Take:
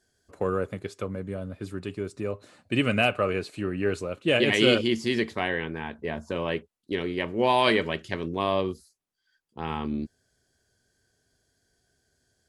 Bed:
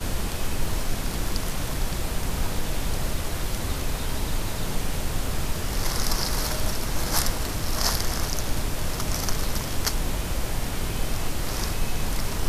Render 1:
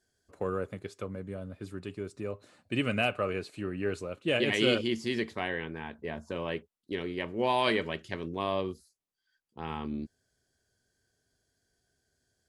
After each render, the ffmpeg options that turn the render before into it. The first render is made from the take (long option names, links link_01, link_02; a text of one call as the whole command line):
ffmpeg -i in.wav -af "volume=-5.5dB" out.wav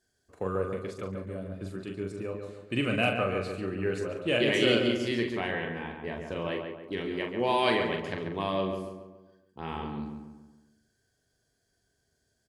ffmpeg -i in.wav -filter_complex "[0:a]asplit=2[link_01][link_02];[link_02]adelay=42,volume=-6dB[link_03];[link_01][link_03]amix=inputs=2:normalize=0,asplit=2[link_04][link_05];[link_05]adelay=140,lowpass=frequency=2200:poles=1,volume=-5dB,asplit=2[link_06][link_07];[link_07]adelay=140,lowpass=frequency=2200:poles=1,volume=0.48,asplit=2[link_08][link_09];[link_09]adelay=140,lowpass=frequency=2200:poles=1,volume=0.48,asplit=2[link_10][link_11];[link_11]adelay=140,lowpass=frequency=2200:poles=1,volume=0.48,asplit=2[link_12][link_13];[link_13]adelay=140,lowpass=frequency=2200:poles=1,volume=0.48,asplit=2[link_14][link_15];[link_15]adelay=140,lowpass=frequency=2200:poles=1,volume=0.48[link_16];[link_06][link_08][link_10][link_12][link_14][link_16]amix=inputs=6:normalize=0[link_17];[link_04][link_17]amix=inputs=2:normalize=0" out.wav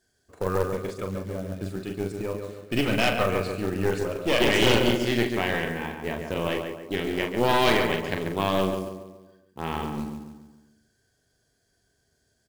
ffmpeg -i in.wav -af "aeval=exprs='0.299*(cos(1*acos(clip(val(0)/0.299,-1,1)))-cos(1*PI/2))+0.0841*(cos(2*acos(clip(val(0)/0.299,-1,1)))-cos(2*PI/2))+0.133*(cos(4*acos(clip(val(0)/0.299,-1,1)))-cos(4*PI/2))+0.0422*(cos(5*acos(clip(val(0)/0.299,-1,1)))-cos(5*PI/2))+0.00531*(cos(8*acos(clip(val(0)/0.299,-1,1)))-cos(8*PI/2))':channel_layout=same,acrusher=bits=5:mode=log:mix=0:aa=0.000001" out.wav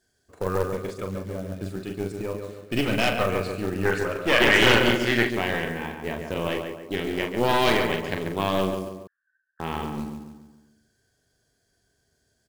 ffmpeg -i in.wav -filter_complex "[0:a]asettb=1/sr,asplit=3[link_01][link_02][link_03];[link_01]atrim=end=3.854[link_04];[link_02]atrim=start=3.85:end=5.31,asetpts=PTS-STARTPTS,afade=type=in:duration=0.004:curve=qsin,afade=type=out:start_time=1.456:duration=0.004:curve=qsin,equalizer=frequency=1600:width=1.2:gain=10[link_05];[link_03]atrim=start=5.306[link_06];[link_04][link_05]acrossfade=duration=0.004:curve1=hsin:curve2=qsin[link_07];[link_07][link_06]acrossfade=duration=0.004:curve1=qsin:curve2=hsin,asettb=1/sr,asplit=3[link_08][link_09][link_10];[link_08]atrim=end=9.074[link_11];[link_09]atrim=start=9.07:end=9.6,asetpts=PTS-STARTPTS,afade=type=in:duration=0.004:curve=qsin,afade=type=out:start_time=0.526:duration=0.004:curve=qsin,asuperpass=centerf=1600:order=8:qfactor=4.4[link_12];[link_10]atrim=start=9.596[link_13];[link_11][link_12]acrossfade=duration=0.004:curve1=hsin:curve2=qsin[link_14];[link_14][link_13]acrossfade=duration=0.004:curve1=qsin:curve2=hsin" out.wav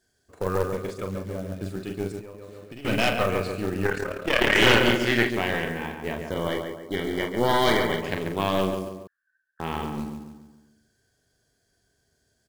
ffmpeg -i in.wav -filter_complex "[0:a]asettb=1/sr,asplit=3[link_01][link_02][link_03];[link_01]atrim=end=2.194[link_04];[link_02]atrim=start=2.19:end=2.85,asetpts=PTS-STARTPTS,afade=type=in:duration=0.004:curve=qsin,afade=type=out:start_time=0.656:duration=0.004:curve=qsin,acompressor=threshold=-37dB:ratio=10:attack=3.2:release=140:knee=1:detection=peak[link_05];[link_03]atrim=start=2.846[link_06];[link_04][link_05]acrossfade=duration=0.004:curve1=hsin:curve2=qsin[link_07];[link_07][link_06]acrossfade=duration=0.004:curve1=qsin:curve2=hsin,asplit=3[link_08][link_09][link_10];[link_08]afade=type=out:start_time=3.86:duration=0.02[link_11];[link_09]tremolo=f=36:d=0.75,afade=type=in:start_time=3.86:duration=0.02,afade=type=out:start_time=4.56:duration=0.02[link_12];[link_10]afade=type=in:start_time=4.56:duration=0.02[link_13];[link_11][link_12][link_13]amix=inputs=3:normalize=0,asettb=1/sr,asplit=3[link_14][link_15][link_16];[link_14]atrim=end=6.304[link_17];[link_15]atrim=start=6.3:end=8.02,asetpts=PTS-STARTPTS,afade=type=in:duration=0.004:curve=qsin,afade=type=out:start_time=1.716:duration=0.004:curve=qsin,asuperstop=centerf=2600:order=12:qfactor=4.7[link_18];[link_16]atrim=start=8.016[link_19];[link_17][link_18]acrossfade=duration=0.004:curve1=hsin:curve2=qsin[link_20];[link_20][link_19]acrossfade=duration=0.004:curve1=qsin:curve2=hsin" out.wav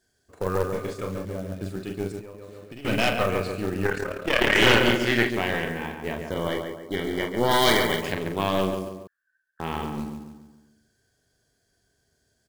ffmpeg -i in.wav -filter_complex "[0:a]asettb=1/sr,asplit=3[link_01][link_02][link_03];[link_01]atrim=end=0.724[link_04];[link_02]atrim=start=0.72:end=1.25,asetpts=PTS-STARTPTS,afade=type=in:duration=0.004:curve=qsin,afade=type=out:start_time=0.526:duration=0.004:curve=qsin,asplit=2[link_05][link_06];[link_06]adelay=28,volume=-4.5dB[link_07];[link_05][link_07]amix=inputs=2:normalize=0,atrim=end_sample=23373[link_08];[link_03]atrim=start=1.246[link_09];[link_04][link_08]acrossfade=duration=0.004:curve1=hsin:curve2=qsin[link_10];[link_10][link_09]acrossfade=duration=0.004:curve1=qsin:curve2=hsin,asettb=1/sr,asplit=3[link_11][link_12][link_13];[link_11]atrim=end=7.514[link_14];[link_12]atrim=start=7.51:end=8.12,asetpts=PTS-STARTPTS,afade=type=in:duration=0.004:curve=qsin,afade=type=out:start_time=0.606:duration=0.004:curve=qsin,highshelf=frequency=3000:gain=8.5[link_15];[link_13]atrim=start=8.116[link_16];[link_14][link_15]acrossfade=duration=0.004:curve1=hsin:curve2=qsin[link_17];[link_17][link_16]acrossfade=duration=0.004:curve1=qsin:curve2=hsin" out.wav